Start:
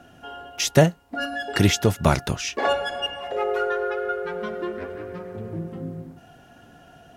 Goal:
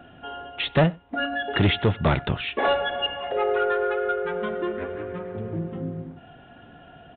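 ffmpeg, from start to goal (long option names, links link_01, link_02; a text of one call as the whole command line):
ffmpeg -i in.wav -filter_complex "[0:a]aresample=8000,asoftclip=type=tanh:threshold=-15dB,aresample=44100,asplit=2[link_01][link_02];[link_02]adelay=93.29,volume=-26dB,highshelf=frequency=4000:gain=-2.1[link_03];[link_01][link_03]amix=inputs=2:normalize=0,volume=2dB" out.wav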